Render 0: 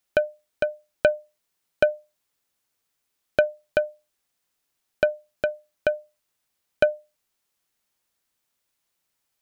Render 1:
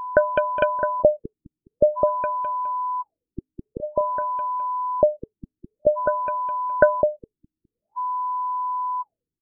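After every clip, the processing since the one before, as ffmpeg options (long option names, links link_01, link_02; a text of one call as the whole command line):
ffmpeg -i in.wav -filter_complex "[0:a]aeval=exprs='val(0)+0.0251*sin(2*PI*1000*n/s)':channel_layout=same,asplit=2[link_01][link_02];[link_02]adelay=207,lowpass=frequency=3700:poles=1,volume=-4.5dB,asplit=2[link_03][link_04];[link_04]adelay=207,lowpass=frequency=3700:poles=1,volume=0.34,asplit=2[link_05][link_06];[link_06]adelay=207,lowpass=frequency=3700:poles=1,volume=0.34,asplit=2[link_07][link_08];[link_08]adelay=207,lowpass=frequency=3700:poles=1,volume=0.34[link_09];[link_01][link_03][link_05][link_07][link_09]amix=inputs=5:normalize=0,afftfilt=real='re*lt(b*sr/1024,330*pow(3700/330,0.5+0.5*sin(2*PI*0.5*pts/sr)))':imag='im*lt(b*sr/1024,330*pow(3700/330,0.5+0.5*sin(2*PI*0.5*pts/sr)))':win_size=1024:overlap=0.75,volume=4dB" out.wav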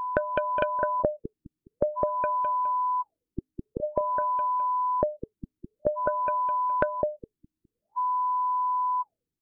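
ffmpeg -i in.wav -af "acompressor=threshold=-22dB:ratio=12" out.wav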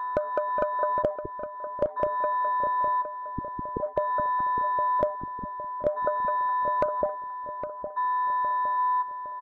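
ffmpeg -i in.wav -filter_complex "[0:a]afwtdn=0.0316,asoftclip=type=hard:threshold=-13.5dB,asplit=2[link_01][link_02];[link_02]adelay=811,lowpass=frequency=1400:poles=1,volume=-8dB,asplit=2[link_03][link_04];[link_04]adelay=811,lowpass=frequency=1400:poles=1,volume=0.46,asplit=2[link_05][link_06];[link_06]adelay=811,lowpass=frequency=1400:poles=1,volume=0.46,asplit=2[link_07][link_08];[link_08]adelay=811,lowpass=frequency=1400:poles=1,volume=0.46,asplit=2[link_09][link_10];[link_10]adelay=811,lowpass=frequency=1400:poles=1,volume=0.46[link_11];[link_03][link_05][link_07][link_09][link_11]amix=inputs=5:normalize=0[link_12];[link_01][link_12]amix=inputs=2:normalize=0" out.wav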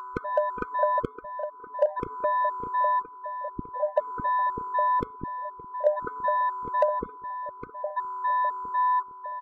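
ffmpeg -i in.wav -af "afftfilt=real='re*gt(sin(2*PI*2*pts/sr)*(1-2*mod(floor(b*sr/1024/510),2)),0)':imag='im*gt(sin(2*PI*2*pts/sr)*(1-2*mod(floor(b*sr/1024/510),2)),0)':win_size=1024:overlap=0.75,volume=4dB" out.wav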